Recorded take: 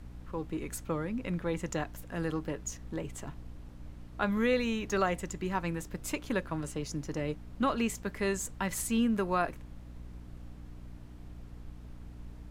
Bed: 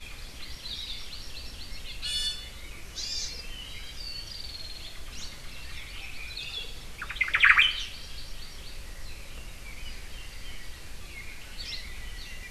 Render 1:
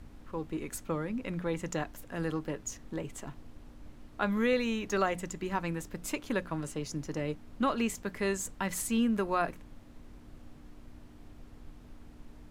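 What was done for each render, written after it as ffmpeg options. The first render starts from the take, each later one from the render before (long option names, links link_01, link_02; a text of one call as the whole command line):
ffmpeg -i in.wav -af "bandreject=frequency=60:width_type=h:width=6,bandreject=frequency=120:width_type=h:width=6,bandreject=frequency=180:width_type=h:width=6" out.wav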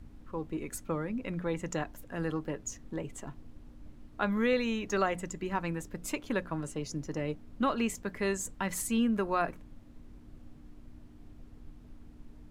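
ffmpeg -i in.wav -af "afftdn=noise_reduction=6:noise_floor=-52" out.wav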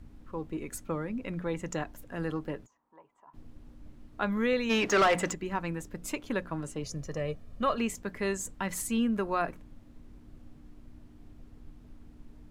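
ffmpeg -i in.wav -filter_complex "[0:a]asplit=3[link_01][link_02][link_03];[link_01]afade=type=out:start_time=2.65:duration=0.02[link_04];[link_02]bandpass=frequency=970:width_type=q:width=6.4,afade=type=in:start_time=2.65:duration=0.02,afade=type=out:start_time=3.33:duration=0.02[link_05];[link_03]afade=type=in:start_time=3.33:duration=0.02[link_06];[link_04][link_05][link_06]amix=inputs=3:normalize=0,asplit=3[link_07][link_08][link_09];[link_07]afade=type=out:start_time=4.69:duration=0.02[link_10];[link_08]asplit=2[link_11][link_12];[link_12]highpass=frequency=720:poles=1,volume=24dB,asoftclip=type=tanh:threshold=-15dB[link_13];[link_11][link_13]amix=inputs=2:normalize=0,lowpass=frequency=3100:poles=1,volume=-6dB,afade=type=in:start_time=4.69:duration=0.02,afade=type=out:start_time=5.33:duration=0.02[link_14];[link_09]afade=type=in:start_time=5.33:duration=0.02[link_15];[link_10][link_14][link_15]amix=inputs=3:normalize=0,asettb=1/sr,asplit=3[link_16][link_17][link_18];[link_16]atrim=end=6.834[link_19];[link_17]atrim=start=6.83:end=7.78,asetpts=PTS-STARTPTS,afade=type=in:duration=0.004:curve=qsin,afade=type=out:start_time=0.946:duration=0.004:curve=qsin,aecho=1:1:1.7:0.59,atrim=end_sample=41895[link_20];[link_18]atrim=start=7.776[link_21];[link_19][link_20]acrossfade=duration=0.004:curve1=hsin:curve2=qsin[link_22];[link_22][link_21]acrossfade=duration=0.004:curve1=qsin:curve2=hsin" out.wav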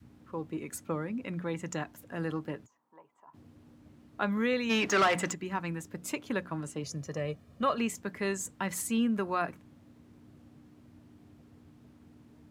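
ffmpeg -i in.wav -af "highpass=frequency=87:width=0.5412,highpass=frequency=87:width=1.3066,adynamicequalizer=threshold=0.00562:dfrequency=510:dqfactor=1.3:tfrequency=510:tqfactor=1.3:attack=5:release=100:ratio=0.375:range=2.5:mode=cutabove:tftype=bell" out.wav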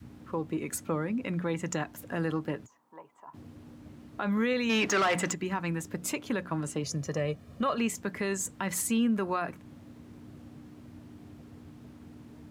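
ffmpeg -i in.wav -filter_complex "[0:a]asplit=2[link_01][link_02];[link_02]acompressor=threshold=-39dB:ratio=6,volume=2.5dB[link_03];[link_01][link_03]amix=inputs=2:normalize=0,alimiter=limit=-20dB:level=0:latency=1:release=21" out.wav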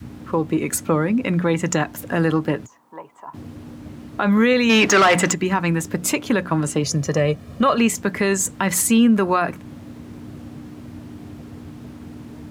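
ffmpeg -i in.wav -af "volume=12dB" out.wav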